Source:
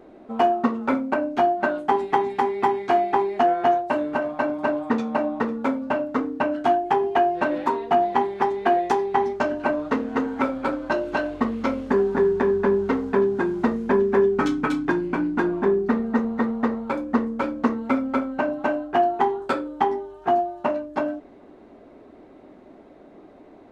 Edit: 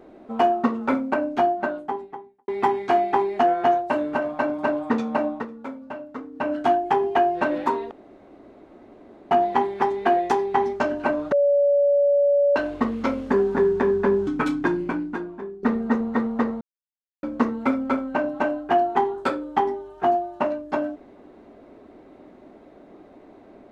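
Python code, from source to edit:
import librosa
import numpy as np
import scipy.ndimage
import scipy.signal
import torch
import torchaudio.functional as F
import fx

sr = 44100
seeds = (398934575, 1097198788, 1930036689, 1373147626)

y = fx.studio_fade_out(x, sr, start_s=1.25, length_s=1.23)
y = fx.edit(y, sr, fx.fade_down_up(start_s=5.27, length_s=1.25, db=-11.0, fade_s=0.2),
    fx.insert_room_tone(at_s=7.91, length_s=1.4),
    fx.bleep(start_s=9.92, length_s=1.24, hz=570.0, db=-15.0),
    fx.cut(start_s=12.87, length_s=1.64),
    fx.fade_out_to(start_s=15.05, length_s=0.82, curve='qua', floor_db=-16.5),
    fx.silence(start_s=16.85, length_s=0.62), tone=tone)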